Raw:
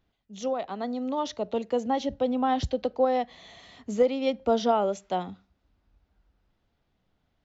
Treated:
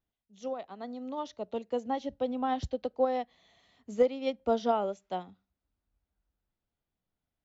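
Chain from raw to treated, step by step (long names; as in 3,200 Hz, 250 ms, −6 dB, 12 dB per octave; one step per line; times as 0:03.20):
expander for the loud parts 1.5 to 1, over −43 dBFS
level −2 dB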